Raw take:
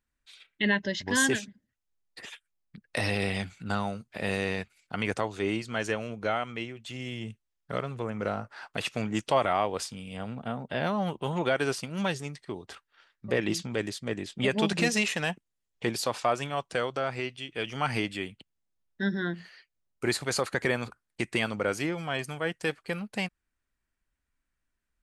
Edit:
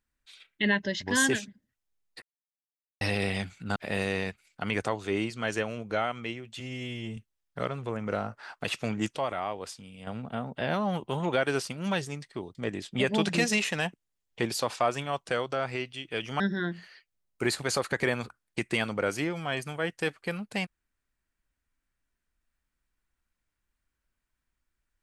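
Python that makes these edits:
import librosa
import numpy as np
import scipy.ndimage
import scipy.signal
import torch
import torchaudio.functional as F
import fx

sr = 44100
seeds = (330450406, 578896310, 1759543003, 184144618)

y = fx.edit(x, sr, fx.silence(start_s=2.22, length_s=0.79),
    fx.cut(start_s=3.76, length_s=0.32),
    fx.stretch_span(start_s=6.92, length_s=0.38, factor=1.5),
    fx.clip_gain(start_s=9.28, length_s=0.92, db=-6.5),
    fx.cut(start_s=12.68, length_s=1.31),
    fx.cut(start_s=17.84, length_s=1.18), tone=tone)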